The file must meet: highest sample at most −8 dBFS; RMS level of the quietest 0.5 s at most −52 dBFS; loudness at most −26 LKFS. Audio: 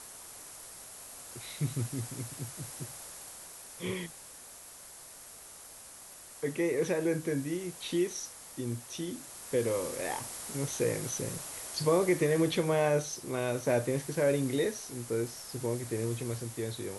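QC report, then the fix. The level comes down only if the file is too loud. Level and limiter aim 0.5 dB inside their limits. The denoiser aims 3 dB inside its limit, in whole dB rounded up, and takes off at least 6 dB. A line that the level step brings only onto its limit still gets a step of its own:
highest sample −15.5 dBFS: in spec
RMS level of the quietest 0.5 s −50 dBFS: out of spec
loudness −33.0 LKFS: in spec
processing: broadband denoise 6 dB, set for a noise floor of −50 dBFS

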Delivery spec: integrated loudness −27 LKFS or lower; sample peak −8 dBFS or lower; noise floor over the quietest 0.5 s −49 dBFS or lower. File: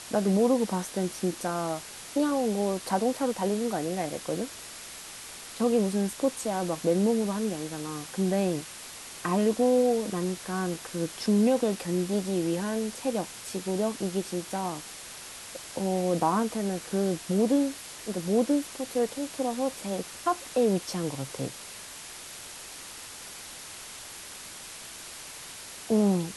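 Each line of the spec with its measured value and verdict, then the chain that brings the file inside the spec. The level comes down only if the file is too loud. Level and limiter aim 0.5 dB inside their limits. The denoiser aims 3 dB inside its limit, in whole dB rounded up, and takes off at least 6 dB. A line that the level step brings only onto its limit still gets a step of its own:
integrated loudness −28.5 LKFS: in spec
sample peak −13.0 dBFS: in spec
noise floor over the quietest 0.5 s −43 dBFS: out of spec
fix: broadband denoise 9 dB, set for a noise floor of −43 dBFS

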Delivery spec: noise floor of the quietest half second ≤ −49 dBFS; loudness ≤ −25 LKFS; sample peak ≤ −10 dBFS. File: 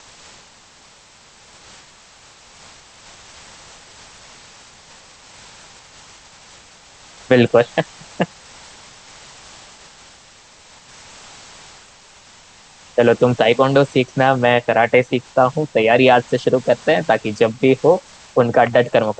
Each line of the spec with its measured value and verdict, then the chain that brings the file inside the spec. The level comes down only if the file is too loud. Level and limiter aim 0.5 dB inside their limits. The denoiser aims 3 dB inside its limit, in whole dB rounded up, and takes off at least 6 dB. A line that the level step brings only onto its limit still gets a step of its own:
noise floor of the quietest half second −47 dBFS: out of spec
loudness −16.0 LKFS: out of spec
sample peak −1.5 dBFS: out of spec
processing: level −9.5 dB

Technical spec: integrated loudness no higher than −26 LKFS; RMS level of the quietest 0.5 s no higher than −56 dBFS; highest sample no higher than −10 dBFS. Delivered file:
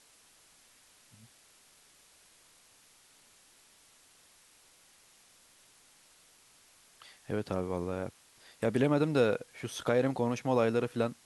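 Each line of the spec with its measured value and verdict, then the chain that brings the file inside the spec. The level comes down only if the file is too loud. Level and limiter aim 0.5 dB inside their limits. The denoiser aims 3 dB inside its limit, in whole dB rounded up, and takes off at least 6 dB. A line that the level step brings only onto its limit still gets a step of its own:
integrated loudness −31.5 LKFS: in spec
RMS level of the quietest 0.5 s −62 dBFS: in spec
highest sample −13.5 dBFS: in spec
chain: no processing needed

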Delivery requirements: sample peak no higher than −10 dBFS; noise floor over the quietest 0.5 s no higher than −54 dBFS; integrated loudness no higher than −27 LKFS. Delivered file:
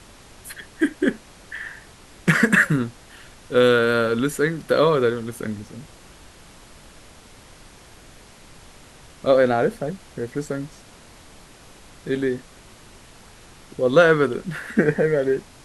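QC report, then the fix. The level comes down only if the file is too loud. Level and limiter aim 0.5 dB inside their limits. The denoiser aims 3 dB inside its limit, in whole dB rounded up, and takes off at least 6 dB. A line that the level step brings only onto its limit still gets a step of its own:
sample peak −3.5 dBFS: out of spec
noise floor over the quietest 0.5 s −47 dBFS: out of spec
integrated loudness −21.0 LKFS: out of spec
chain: broadband denoise 6 dB, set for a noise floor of −47 dBFS
level −6.5 dB
brickwall limiter −10.5 dBFS

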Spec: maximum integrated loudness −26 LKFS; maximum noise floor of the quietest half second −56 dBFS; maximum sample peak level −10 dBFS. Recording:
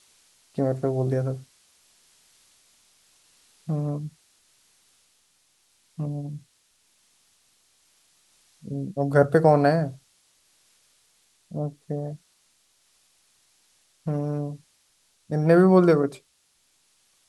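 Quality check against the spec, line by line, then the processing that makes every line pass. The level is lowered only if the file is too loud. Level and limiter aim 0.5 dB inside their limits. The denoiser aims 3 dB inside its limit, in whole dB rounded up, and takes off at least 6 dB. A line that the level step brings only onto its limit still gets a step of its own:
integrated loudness −24.0 LKFS: out of spec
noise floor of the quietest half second −66 dBFS: in spec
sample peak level −5.0 dBFS: out of spec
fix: level −2.5 dB
brickwall limiter −10.5 dBFS

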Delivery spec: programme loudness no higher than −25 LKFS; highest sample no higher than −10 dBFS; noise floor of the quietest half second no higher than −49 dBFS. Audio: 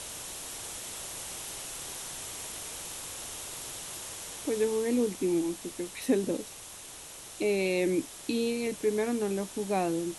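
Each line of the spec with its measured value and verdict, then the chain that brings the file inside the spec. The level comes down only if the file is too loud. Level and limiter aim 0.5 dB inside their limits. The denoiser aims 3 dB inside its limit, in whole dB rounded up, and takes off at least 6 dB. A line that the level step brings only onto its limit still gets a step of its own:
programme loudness −32.0 LKFS: in spec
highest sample −15.5 dBFS: in spec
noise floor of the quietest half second −46 dBFS: out of spec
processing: broadband denoise 6 dB, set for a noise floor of −46 dBFS

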